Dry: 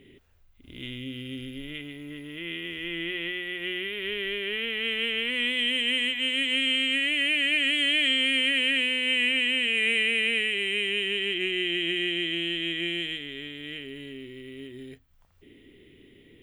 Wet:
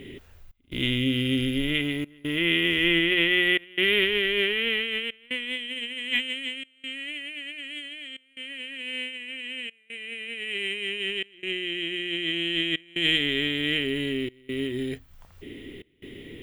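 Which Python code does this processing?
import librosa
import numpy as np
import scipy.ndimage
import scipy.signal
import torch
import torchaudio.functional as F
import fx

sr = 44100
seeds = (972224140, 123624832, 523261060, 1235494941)

y = fx.over_compress(x, sr, threshold_db=-33.0, ratio=-0.5)
y = fx.step_gate(y, sr, bpm=147, pattern='xxxxx..xxxxxxxx', floor_db=-24.0, edge_ms=4.5)
y = F.gain(torch.from_numpy(y), 6.5).numpy()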